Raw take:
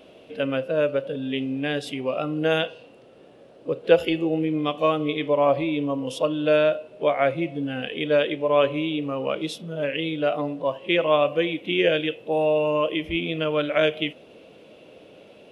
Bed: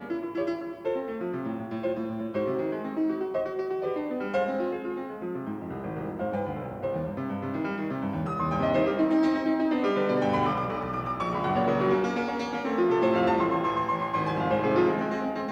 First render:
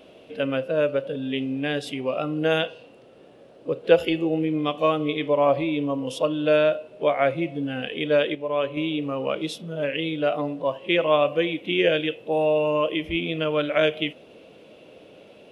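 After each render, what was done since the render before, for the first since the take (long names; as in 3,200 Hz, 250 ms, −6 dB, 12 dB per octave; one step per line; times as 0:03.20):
0:08.35–0:08.77: clip gain −5.5 dB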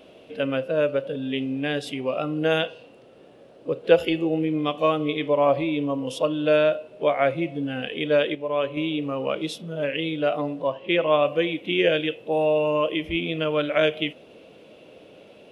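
0:10.67–0:11.24: high-frequency loss of the air 80 metres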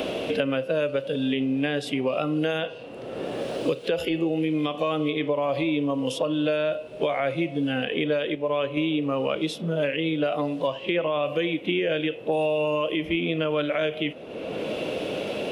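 brickwall limiter −16 dBFS, peak gain reduction 11.5 dB
multiband upward and downward compressor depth 100%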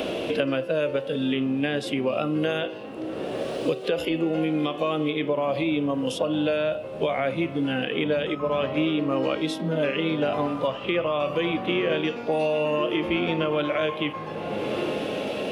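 mix in bed −8 dB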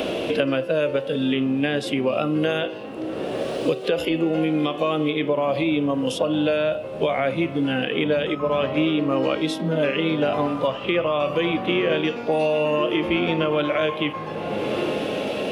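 level +3 dB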